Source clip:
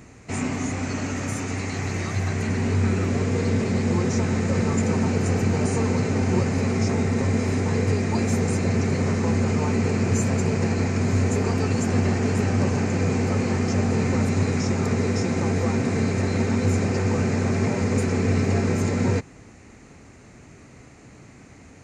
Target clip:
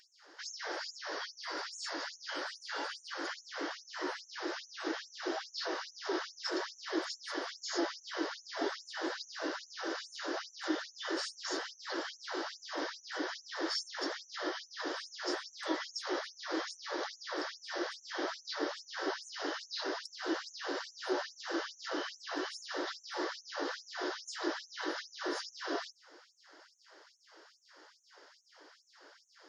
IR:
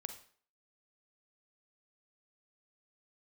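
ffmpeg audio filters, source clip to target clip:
-af "asetrate=32667,aresample=44100,highpass=f=100:w=0.5412,highpass=f=100:w=1.3066,afftfilt=real='re*gte(b*sr/1024,270*pow(5900/270,0.5+0.5*sin(2*PI*2.4*pts/sr)))':imag='im*gte(b*sr/1024,270*pow(5900/270,0.5+0.5*sin(2*PI*2.4*pts/sr)))':win_size=1024:overlap=0.75,volume=0.631"

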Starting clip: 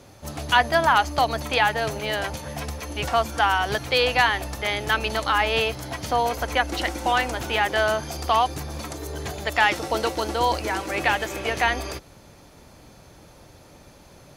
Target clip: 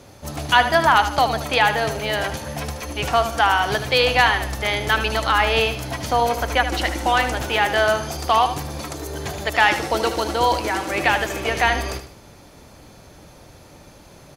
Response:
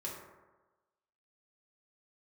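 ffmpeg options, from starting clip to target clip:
-af "aecho=1:1:76|152|228|304:0.316|0.117|0.0433|0.016,volume=1.41"

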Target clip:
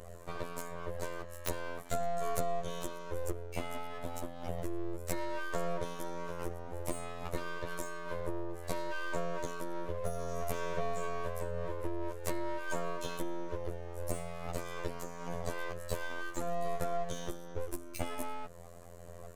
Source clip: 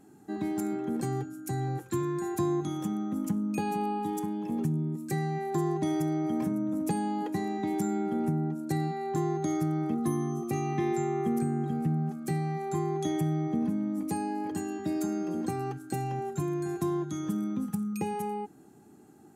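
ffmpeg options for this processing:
-af "aphaser=in_gain=1:out_gain=1:delay=2.4:decay=0.3:speed=1.2:type=sinusoidal,acompressor=threshold=0.0158:ratio=10,afftfilt=real='hypot(re,im)*cos(PI*b)':imag='0':win_size=2048:overlap=0.75,aeval=exprs='abs(val(0))':c=same,volume=2.99"

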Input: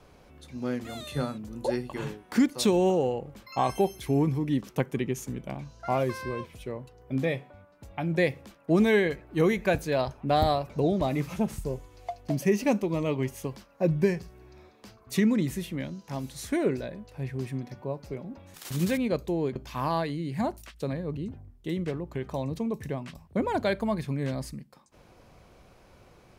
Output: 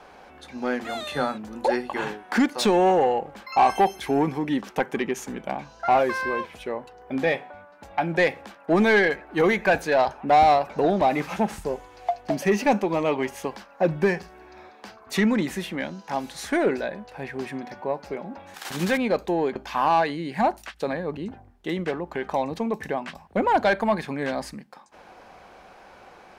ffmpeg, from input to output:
-filter_complex "[0:a]equalizer=f=125:t=o:w=0.33:g=-12,equalizer=f=200:t=o:w=0.33:g=3,equalizer=f=800:t=o:w=0.33:g=8,equalizer=f=1600:t=o:w=0.33:g=5,asplit=2[s0][s1];[s1]highpass=f=720:p=1,volume=6.31,asoftclip=type=tanh:threshold=0.355[s2];[s0][s2]amix=inputs=2:normalize=0,lowpass=f=2800:p=1,volume=0.501"

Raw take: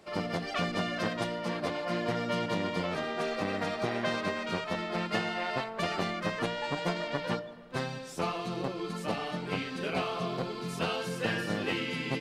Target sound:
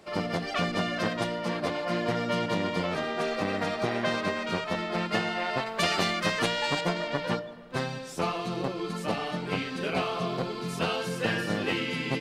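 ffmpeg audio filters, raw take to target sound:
-filter_complex "[0:a]asettb=1/sr,asplit=3[s0][s1][s2];[s0]atrim=end=5.664[s3];[s1]atrim=start=5.66:end=6.81,asetpts=PTS-STARTPTS,afade=t=in:d=0.004:c=qsin,afade=t=out:st=1.146:d=0.004:c=qsin,highshelf=f=2200:g=10[s4];[s2]atrim=start=6.806[s5];[s3][s4]acrossfade=d=0.004:c1=hsin:c2=qsin[s6];[s6][s5]acrossfade=d=0.004:c1=qsin:c2=hsin,volume=1.41"

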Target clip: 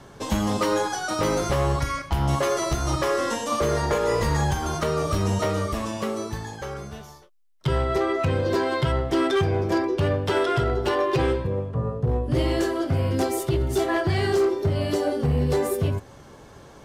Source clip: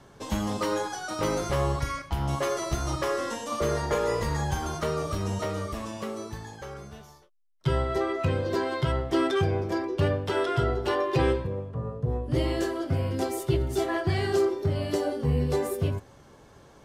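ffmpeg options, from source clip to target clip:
-af "alimiter=limit=0.119:level=0:latency=1:release=284,volume=13.3,asoftclip=hard,volume=0.075,volume=2.11"

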